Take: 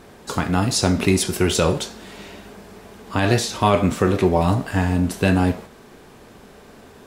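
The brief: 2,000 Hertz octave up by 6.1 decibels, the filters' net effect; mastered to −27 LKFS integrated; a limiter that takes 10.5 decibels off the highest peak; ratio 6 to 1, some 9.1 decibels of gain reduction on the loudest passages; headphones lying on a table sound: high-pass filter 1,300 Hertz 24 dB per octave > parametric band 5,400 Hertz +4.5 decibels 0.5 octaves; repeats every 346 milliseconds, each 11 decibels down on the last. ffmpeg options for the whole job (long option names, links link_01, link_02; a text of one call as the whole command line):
ffmpeg -i in.wav -af "equalizer=frequency=2000:width_type=o:gain=8.5,acompressor=threshold=-21dB:ratio=6,alimiter=limit=-16dB:level=0:latency=1,highpass=frequency=1300:width=0.5412,highpass=frequency=1300:width=1.3066,equalizer=frequency=5400:width_type=o:width=0.5:gain=4.5,aecho=1:1:346|692|1038:0.282|0.0789|0.0221,volume=4dB" out.wav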